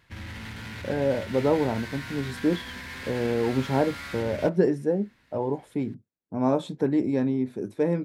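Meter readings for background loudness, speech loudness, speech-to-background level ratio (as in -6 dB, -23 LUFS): -38.0 LUFS, -27.0 LUFS, 11.0 dB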